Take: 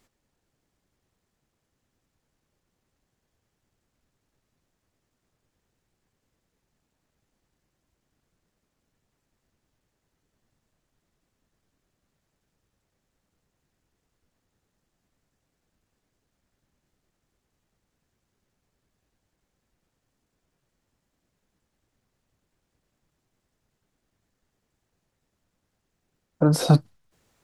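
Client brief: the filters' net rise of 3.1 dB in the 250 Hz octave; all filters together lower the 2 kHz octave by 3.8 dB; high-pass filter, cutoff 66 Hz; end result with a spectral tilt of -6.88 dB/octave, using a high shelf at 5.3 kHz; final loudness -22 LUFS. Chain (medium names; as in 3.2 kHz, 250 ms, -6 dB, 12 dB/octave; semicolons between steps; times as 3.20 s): high-pass 66 Hz; peaking EQ 250 Hz +5.5 dB; peaking EQ 2 kHz -7 dB; treble shelf 5.3 kHz +6 dB; trim -3 dB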